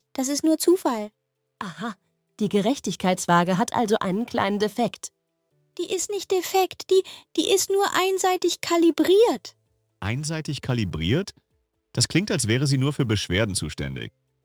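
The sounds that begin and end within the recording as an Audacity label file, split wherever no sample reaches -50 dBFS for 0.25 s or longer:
1.610000	1.950000	sound
2.390000	5.080000	sound
5.770000	9.520000	sound
10.020000	11.380000	sound
11.950000	14.090000	sound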